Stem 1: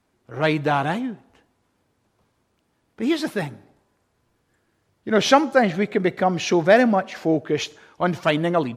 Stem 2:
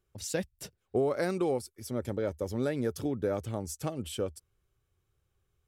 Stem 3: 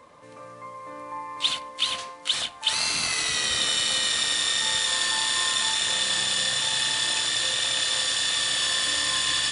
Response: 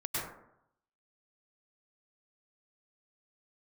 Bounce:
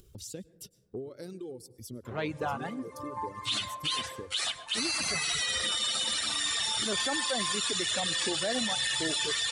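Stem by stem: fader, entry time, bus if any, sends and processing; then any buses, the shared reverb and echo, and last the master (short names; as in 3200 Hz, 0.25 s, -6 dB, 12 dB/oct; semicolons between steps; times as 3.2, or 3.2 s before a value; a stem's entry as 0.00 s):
-12.0 dB, 1.75 s, send -18 dB, dry
-2.5 dB, 0.00 s, send -13.5 dB, band shelf 1200 Hz -12.5 dB 2.3 oct; compressor 2:1, threshold -41 dBFS, peak gain reduction 9 dB
+1.0 dB, 2.05 s, send -7.5 dB, endless flanger 9.3 ms -0.32 Hz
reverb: on, RT60 0.75 s, pre-delay 94 ms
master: reverb removal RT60 1.9 s; upward compressor, threshold -42 dBFS; limiter -21 dBFS, peak gain reduction 10.5 dB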